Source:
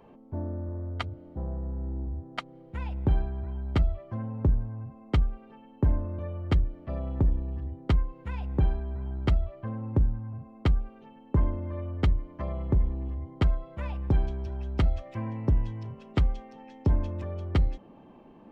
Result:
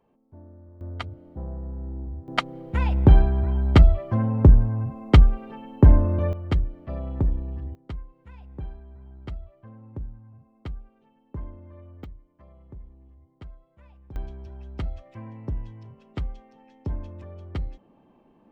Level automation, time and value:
−13.5 dB
from 0:00.81 −0.5 dB
from 0:02.28 +11 dB
from 0:06.33 +1 dB
from 0:07.75 −11.5 dB
from 0:12.04 −19 dB
from 0:14.16 −6.5 dB

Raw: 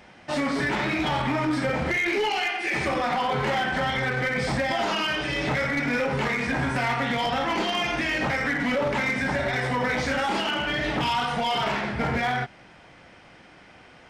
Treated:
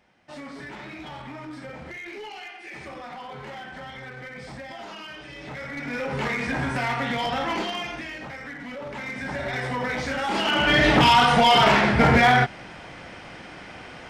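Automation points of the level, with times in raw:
0:05.39 −13.5 dB
0:06.25 −1 dB
0:07.54 −1 dB
0:08.23 −12 dB
0:08.75 −12 dB
0:09.55 −2.5 dB
0:10.19 −2.5 dB
0:10.76 +9 dB

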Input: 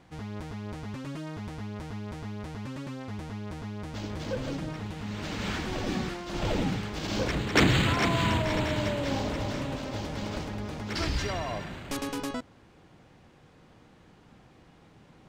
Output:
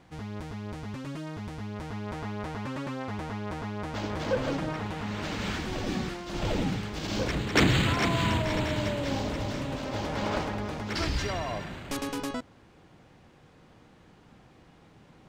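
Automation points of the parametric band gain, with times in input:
parametric band 1,000 Hz 3 octaves
0:01.61 +0.5 dB
0:02.22 +8 dB
0:04.99 +8 dB
0:05.56 −1 dB
0:09.64 −1 dB
0:10.32 +10 dB
0:11.07 +0.5 dB

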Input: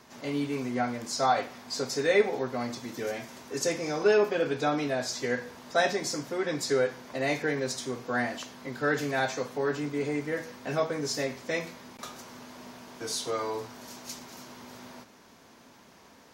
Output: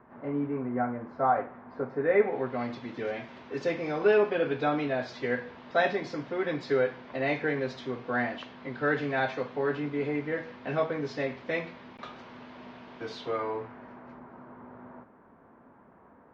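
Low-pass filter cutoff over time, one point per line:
low-pass filter 24 dB per octave
0:02.00 1,600 Hz
0:02.62 3,400 Hz
0:13.11 3,400 Hz
0:14.21 1,500 Hz

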